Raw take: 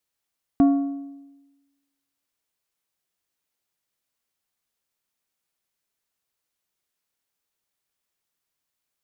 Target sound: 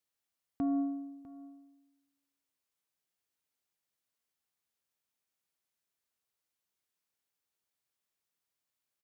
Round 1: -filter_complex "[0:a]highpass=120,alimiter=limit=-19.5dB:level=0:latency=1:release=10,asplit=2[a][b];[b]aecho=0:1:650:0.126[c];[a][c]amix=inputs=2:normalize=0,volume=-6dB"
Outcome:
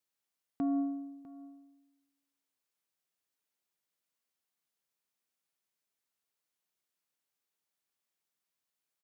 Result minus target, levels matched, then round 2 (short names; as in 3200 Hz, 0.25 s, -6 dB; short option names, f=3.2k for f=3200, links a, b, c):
125 Hz band -3.0 dB
-filter_complex "[0:a]highpass=44,alimiter=limit=-19.5dB:level=0:latency=1:release=10,asplit=2[a][b];[b]aecho=0:1:650:0.126[c];[a][c]amix=inputs=2:normalize=0,volume=-6dB"